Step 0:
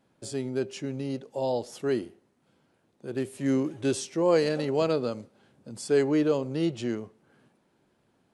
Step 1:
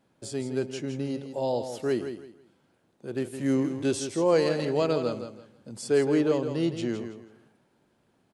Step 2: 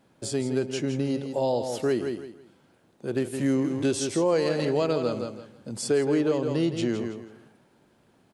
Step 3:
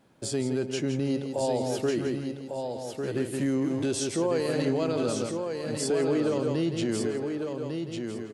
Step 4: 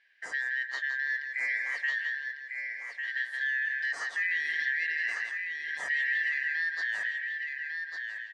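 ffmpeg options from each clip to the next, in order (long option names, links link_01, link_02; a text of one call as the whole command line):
ffmpeg -i in.wav -af "aecho=1:1:164|328|492:0.355|0.0923|0.024" out.wav
ffmpeg -i in.wav -af "acompressor=threshold=-29dB:ratio=2.5,volume=6dB" out.wav
ffmpeg -i in.wav -filter_complex "[0:a]alimiter=limit=-19.5dB:level=0:latency=1:release=25,asplit=2[link_01][link_02];[link_02]aecho=0:1:1150|2300|3450:0.531|0.0956|0.0172[link_03];[link_01][link_03]amix=inputs=2:normalize=0" out.wav
ffmpeg -i in.wav -filter_complex "[0:a]afftfilt=real='real(if(lt(b,272),68*(eq(floor(b/68),0)*3+eq(floor(b/68),1)*0+eq(floor(b/68),2)*1+eq(floor(b/68),3)*2)+mod(b,68),b),0)':imag='imag(if(lt(b,272),68*(eq(floor(b/68),0)*3+eq(floor(b/68),1)*0+eq(floor(b/68),2)*1+eq(floor(b/68),3)*2)+mod(b,68),b),0)':win_size=2048:overlap=0.75,acrossover=split=410 5000:gain=0.0891 1 0.0708[link_01][link_02][link_03];[link_01][link_02][link_03]amix=inputs=3:normalize=0,volume=-4dB" out.wav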